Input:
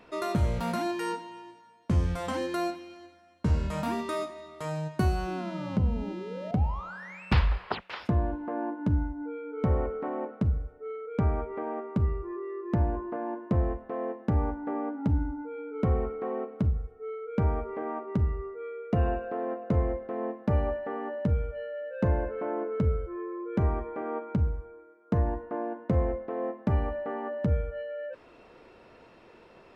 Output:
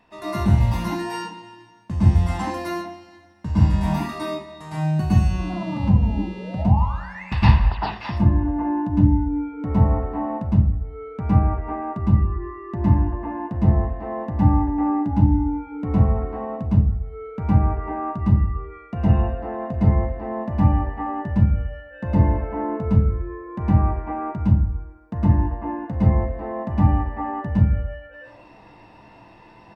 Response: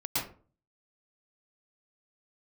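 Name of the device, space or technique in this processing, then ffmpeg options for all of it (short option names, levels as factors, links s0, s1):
microphone above a desk: -filter_complex "[0:a]aecho=1:1:1.1:0.55[s0];[1:a]atrim=start_sample=2205[s1];[s0][s1]afir=irnorm=-1:irlink=0,volume=0.841"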